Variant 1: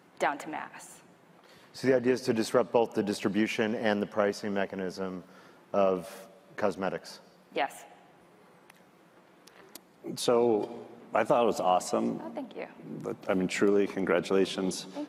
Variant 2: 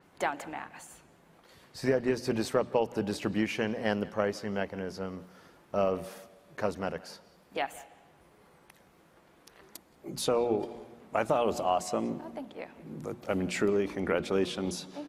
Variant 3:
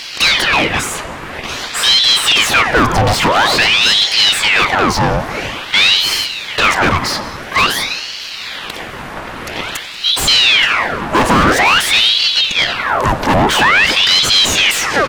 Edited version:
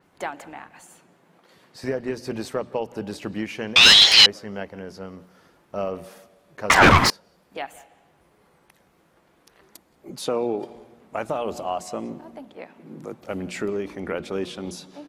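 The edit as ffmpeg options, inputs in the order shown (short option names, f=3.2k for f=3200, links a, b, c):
-filter_complex "[0:a]asplit=3[a][b][c];[2:a]asplit=2[d][e];[1:a]asplit=6[f][g][h][i][j][k];[f]atrim=end=0.832[l];[a]atrim=start=0.828:end=1.842[m];[g]atrim=start=1.838:end=3.762[n];[d]atrim=start=3.758:end=4.262[o];[h]atrim=start=4.258:end=6.702[p];[e]atrim=start=6.698:end=7.102[q];[i]atrim=start=7.098:end=10.102[r];[b]atrim=start=10.098:end=10.702[s];[j]atrim=start=10.698:end=12.572[t];[c]atrim=start=12.568:end=13.202[u];[k]atrim=start=13.198[v];[l][m]acrossfade=d=0.004:c1=hsin:c2=hsin[w];[w][n]acrossfade=d=0.004:c1=hsin:c2=hsin[x];[x][o]acrossfade=d=0.004:c1=hsin:c2=hsin[y];[y][p]acrossfade=d=0.004:c1=hsin:c2=hsin[z];[z][q]acrossfade=d=0.004:c1=hsin:c2=hsin[aa];[aa][r]acrossfade=d=0.004:c1=hsin:c2=hsin[ab];[ab][s]acrossfade=d=0.004:c1=hsin:c2=hsin[ac];[ac][t]acrossfade=d=0.004:c1=hsin:c2=hsin[ad];[ad][u]acrossfade=d=0.004:c1=hsin:c2=hsin[ae];[ae][v]acrossfade=d=0.004:c1=hsin:c2=hsin"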